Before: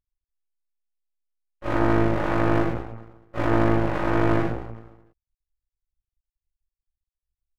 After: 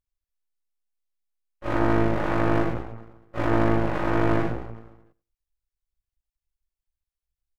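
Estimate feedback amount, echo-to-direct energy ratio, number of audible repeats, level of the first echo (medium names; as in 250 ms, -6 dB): no regular repeats, -20.0 dB, 1, -20.0 dB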